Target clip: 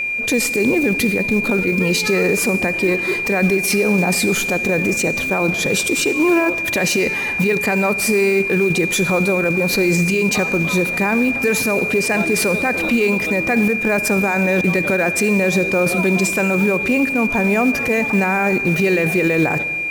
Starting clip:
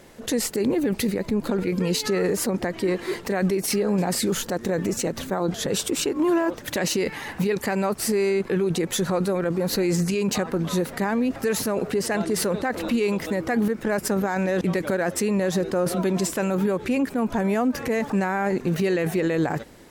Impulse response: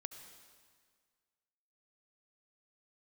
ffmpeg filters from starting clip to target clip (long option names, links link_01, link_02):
-filter_complex "[0:a]acrusher=bits=6:mode=log:mix=0:aa=0.000001,aeval=exprs='val(0)+0.0631*sin(2*PI*2400*n/s)':channel_layout=same,asplit=2[link_01][link_02];[1:a]atrim=start_sample=2205,asetrate=57330,aresample=44100[link_03];[link_02][link_03]afir=irnorm=-1:irlink=0,volume=5dB[link_04];[link_01][link_04]amix=inputs=2:normalize=0"